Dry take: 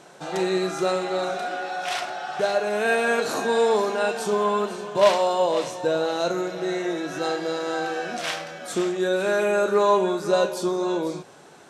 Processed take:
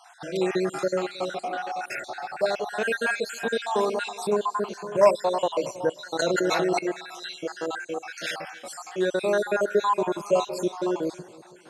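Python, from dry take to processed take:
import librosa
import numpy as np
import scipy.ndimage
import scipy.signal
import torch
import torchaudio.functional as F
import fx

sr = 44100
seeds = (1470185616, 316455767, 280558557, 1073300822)

y = fx.spec_dropout(x, sr, seeds[0], share_pct=56)
y = fx.echo_feedback(y, sr, ms=316, feedback_pct=47, wet_db=-22)
y = fx.env_flatten(y, sr, amount_pct=100, at=(6.19, 6.79))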